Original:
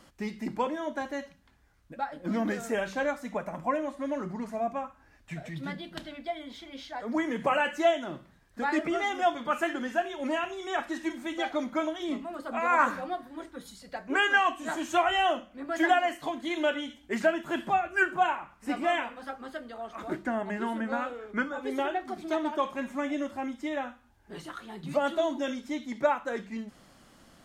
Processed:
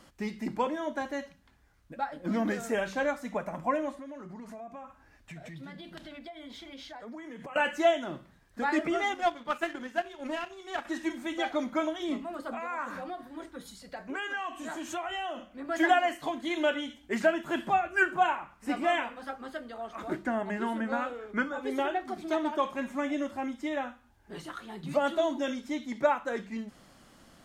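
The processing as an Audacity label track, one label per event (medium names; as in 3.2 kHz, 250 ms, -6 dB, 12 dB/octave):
3.940000	7.560000	compression, threshold -41 dBFS
9.140000	10.850000	power-law waveshaper exponent 1.4
12.540000	15.650000	compression 3:1, threshold -35 dBFS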